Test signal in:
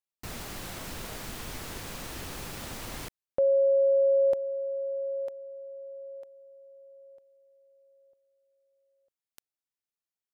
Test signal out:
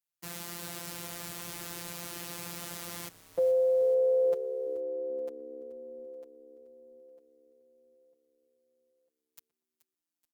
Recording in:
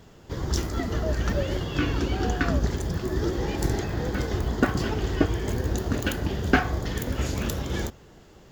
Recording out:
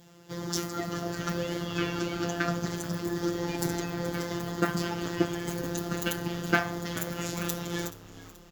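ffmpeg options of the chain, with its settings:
-filter_complex "[0:a]adynamicequalizer=threshold=0.00398:dfrequency=1300:dqfactor=3.9:tfrequency=1300:tqfactor=3.9:attack=5:release=100:ratio=0.375:range=2:mode=boostabove:tftype=bell,asplit=2[s0][s1];[s1]adelay=119,lowpass=f=920:p=1,volume=0.0891,asplit=2[s2][s3];[s3]adelay=119,lowpass=f=920:p=1,volume=0.39,asplit=2[s4][s5];[s5]adelay=119,lowpass=f=920:p=1,volume=0.39[s6];[s2][s4][s6]amix=inputs=3:normalize=0[s7];[s0][s7]amix=inputs=2:normalize=0,afftfilt=real='hypot(re,im)*cos(PI*b)':imag='0':win_size=1024:overlap=0.75,highpass=f=66:w=0.5412,highpass=f=66:w=1.3066,highshelf=f=6000:g=7,asplit=2[s8][s9];[s9]asplit=4[s10][s11][s12][s13];[s10]adelay=429,afreqshift=-69,volume=0.141[s14];[s11]adelay=858,afreqshift=-138,volume=0.0708[s15];[s12]adelay=1287,afreqshift=-207,volume=0.0355[s16];[s13]adelay=1716,afreqshift=-276,volume=0.0176[s17];[s14][s15][s16][s17]amix=inputs=4:normalize=0[s18];[s8][s18]amix=inputs=2:normalize=0" -ar 48000 -c:a libopus -b:a 64k

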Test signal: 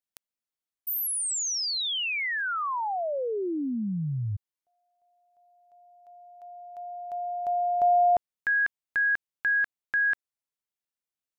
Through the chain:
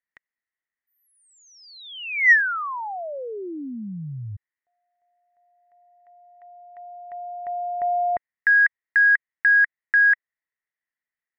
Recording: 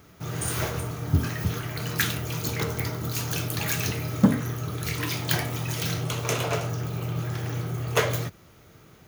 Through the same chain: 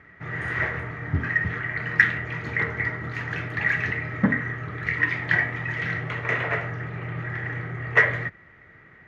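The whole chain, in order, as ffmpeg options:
-filter_complex "[0:a]lowpass=f=1900:t=q:w=13,asplit=2[s0][s1];[s1]asoftclip=type=tanh:threshold=0.501,volume=0.316[s2];[s0][s2]amix=inputs=2:normalize=0,volume=0.531"

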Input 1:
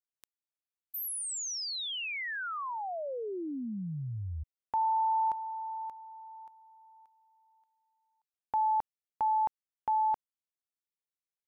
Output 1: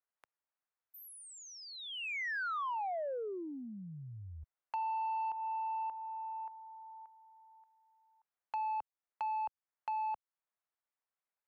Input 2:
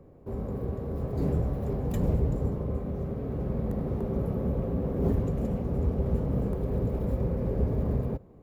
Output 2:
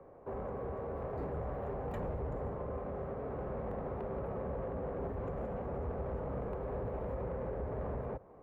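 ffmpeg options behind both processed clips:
-filter_complex "[0:a]acrossover=split=530 2000:gain=0.126 1 0.0631[s0][s1][s2];[s0][s1][s2]amix=inputs=3:normalize=0,alimiter=level_in=2.11:limit=0.0631:level=0:latency=1:release=140,volume=0.473,acrossover=split=120[s3][s4];[s4]acompressor=threshold=0.00631:ratio=2.5:attack=16:release=700:knee=2.83:detection=peak[s5];[s3][s5]amix=inputs=2:normalize=0,asoftclip=type=tanh:threshold=0.0112,volume=2.51"

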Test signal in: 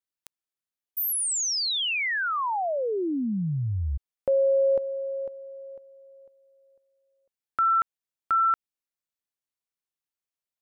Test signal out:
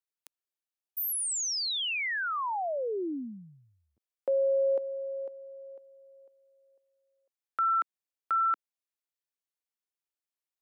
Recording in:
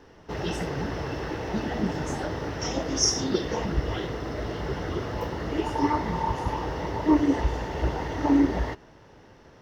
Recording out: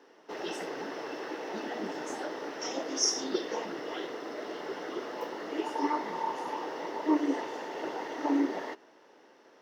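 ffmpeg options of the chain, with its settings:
-af "highpass=f=280:w=0.5412,highpass=f=280:w=1.3066,volume=0.596"

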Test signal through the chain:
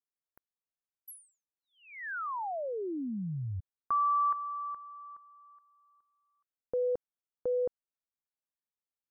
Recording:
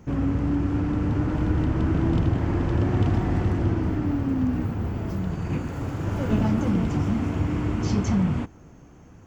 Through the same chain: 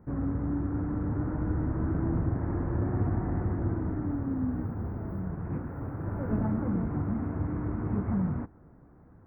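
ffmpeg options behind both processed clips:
-af "asuperstop=centerf=5000:order=8:qfactor=0.5,highshelf=f=5200:g=-7.5,volume=0.473"

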